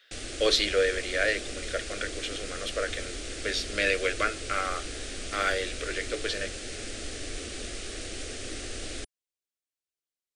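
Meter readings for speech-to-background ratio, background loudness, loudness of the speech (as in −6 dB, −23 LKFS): 7.5 dB, −37.0 LKFS, −29.5 LKFS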